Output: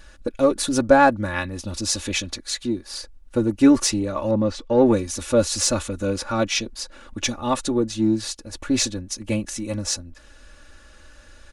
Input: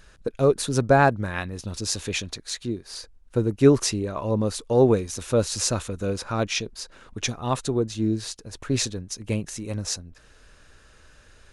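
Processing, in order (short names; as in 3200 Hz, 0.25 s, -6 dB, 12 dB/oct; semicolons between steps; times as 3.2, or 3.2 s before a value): comb 3.5 ms, depth 83%; in parallel at -12 dB: soft clip -19 dBFS, distortion -8 dB; 4.31–4.86 on the sum: air absorption 140 m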